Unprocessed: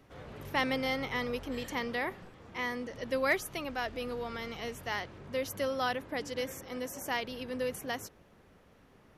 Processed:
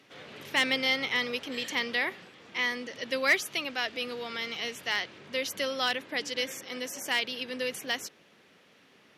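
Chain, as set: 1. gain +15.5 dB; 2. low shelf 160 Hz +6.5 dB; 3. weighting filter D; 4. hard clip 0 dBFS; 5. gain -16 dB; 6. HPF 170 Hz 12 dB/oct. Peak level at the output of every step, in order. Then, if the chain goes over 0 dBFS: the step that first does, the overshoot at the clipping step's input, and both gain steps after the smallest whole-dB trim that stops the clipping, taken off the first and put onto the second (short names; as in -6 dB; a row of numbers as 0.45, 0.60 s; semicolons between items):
-0.5, -1.0, +7.0, 0.0, -16.0, -14.0 dBFS; step 3, 7.0 dB; step 1 +8.5 dB, step 5 -9 dB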